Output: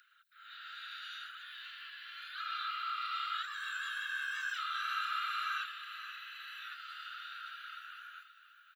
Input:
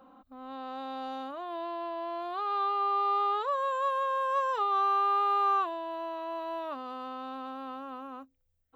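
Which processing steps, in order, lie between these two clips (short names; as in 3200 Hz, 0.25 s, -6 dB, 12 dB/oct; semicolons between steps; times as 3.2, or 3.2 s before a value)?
whisperiser; steep high-pass 1400 Hz 96 dB/oct; feedback echo 0.527 s, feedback 35%, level -12 dB; gain +5 dB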